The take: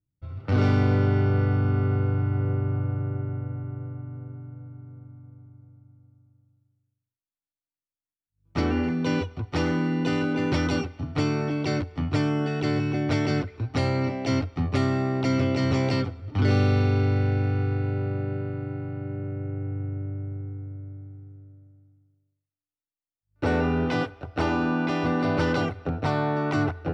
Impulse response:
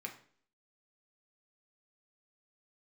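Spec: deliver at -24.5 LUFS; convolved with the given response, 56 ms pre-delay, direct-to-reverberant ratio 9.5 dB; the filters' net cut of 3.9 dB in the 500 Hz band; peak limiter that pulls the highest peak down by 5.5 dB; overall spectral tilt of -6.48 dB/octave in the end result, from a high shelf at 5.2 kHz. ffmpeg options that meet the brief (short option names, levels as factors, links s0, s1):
-filter_complex "[0:a]equalizer=f=500:t=o:g=-5,highshelf=f=5200:g=-6,alimiter=limit=0.141:level=0:latency=1,asplit=2[s0][s1];[1:a]atrim=start_sample=2205,adelay=56[s2];[s1][s2]afir=irnorm=-1:irlink=0,volume=0.376[s3];[s0][s3]amix=inputs=2:normalize=0,volume=1.41"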